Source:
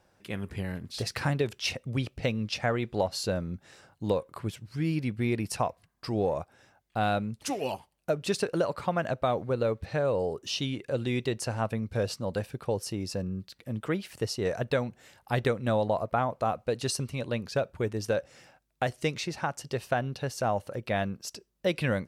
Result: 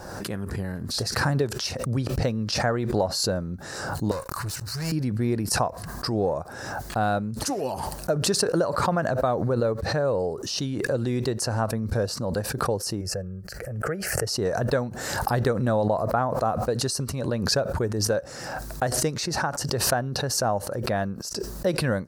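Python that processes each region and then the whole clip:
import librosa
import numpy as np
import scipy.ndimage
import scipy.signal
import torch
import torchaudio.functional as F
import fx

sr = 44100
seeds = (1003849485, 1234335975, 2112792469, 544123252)

y = fx.chain(x, sr, fx.tone_stack(knobs='10-0-10'),
    fx.leveller(passes=5),
    fx.notch(hz=3300.0, q=7.1), at=(4.11, 4.92))
y = fx.chain(y, sr, fx.high_shelf(hz=6200.0, db=-6.0),
    fx.fixed_phaser(hz=1000.0, stages=6),
    fx.pre_swell(db_per_s=37.0), at=(13.01, 14.27))
y = fx.band_shelf(y, sr, hz=2700.0, db=-11.0, octaves=1.0)
y = fx.pre_swell(y, sr, db_per_s=36.0)
y = y * librosa.db_to_amplitude(3.0)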